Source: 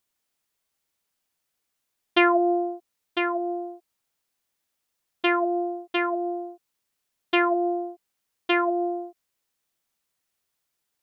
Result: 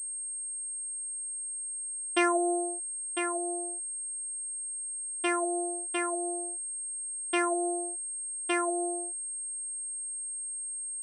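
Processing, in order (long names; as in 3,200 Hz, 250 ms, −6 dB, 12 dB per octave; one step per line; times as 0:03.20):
switching amplifier with a slow clock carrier 8,500 Hz
level −6.5 dB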